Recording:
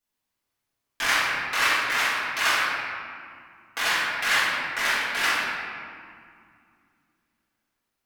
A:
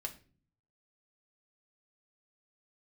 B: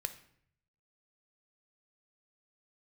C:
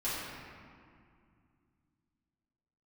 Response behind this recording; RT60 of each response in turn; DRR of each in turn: C; 0.40, 0.65, 2.3 s; 2.5, 8.5, -11.5 dB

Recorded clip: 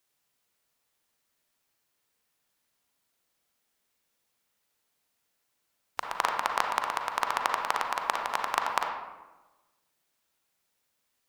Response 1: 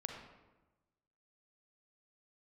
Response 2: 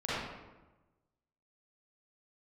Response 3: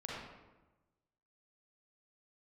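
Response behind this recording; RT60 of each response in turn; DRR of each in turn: 1; 1.1, 1.1, 1.1 s; 2.0, -11.5, -5.5 dB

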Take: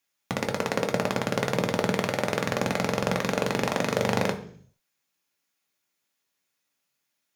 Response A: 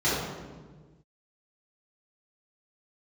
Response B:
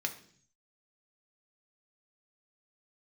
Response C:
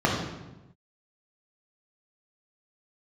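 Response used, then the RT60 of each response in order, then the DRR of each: B; 1.4, 0.55, 1.0 s; -11.5, 3.5, -2.5 dB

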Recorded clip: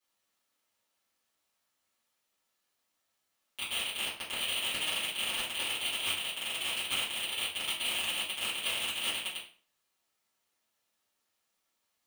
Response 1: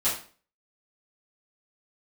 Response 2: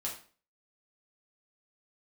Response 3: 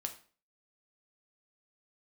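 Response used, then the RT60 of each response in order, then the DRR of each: 1; 0.40, 0.40, 0.40 s; -12.5, -3.5, 4.5 dB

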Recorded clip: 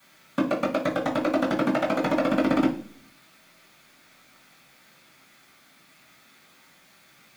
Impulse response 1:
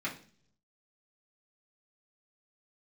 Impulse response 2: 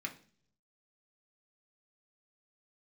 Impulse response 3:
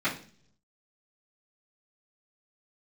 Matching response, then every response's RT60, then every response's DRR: 3; 0.50, 0.50, 0.45 s; -7.5, 0.5, -15.0 dB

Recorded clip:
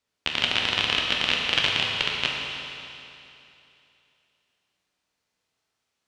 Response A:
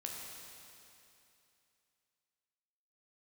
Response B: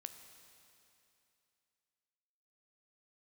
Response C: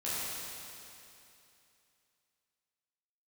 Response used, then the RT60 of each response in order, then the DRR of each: A; 2.8, 2.8, 2.8 s; -1.5, 7.5, -11.0 dB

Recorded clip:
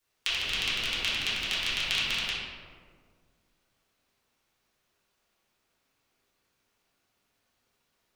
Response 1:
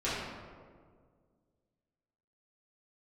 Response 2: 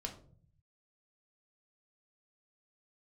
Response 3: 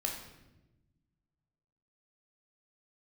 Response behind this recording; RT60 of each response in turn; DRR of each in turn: 1; 1.8, 0.50, 1.0 s; -11.5, 2.0, 0.0 dB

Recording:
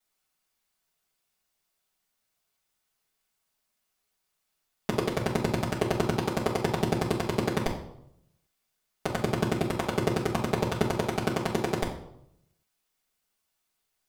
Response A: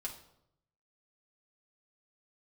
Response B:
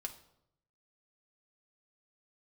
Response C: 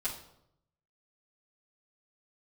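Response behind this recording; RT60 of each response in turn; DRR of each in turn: C; 0.80, 0.80, 0.75 s; -2.0, 3.5, -10.5 dB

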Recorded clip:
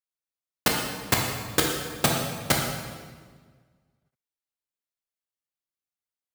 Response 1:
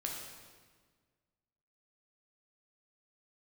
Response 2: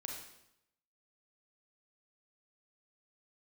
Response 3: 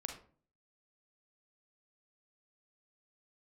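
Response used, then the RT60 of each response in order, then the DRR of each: 1; 1.6, 0.80, 0.45 s; -1.0, 0.0, 3.0 dB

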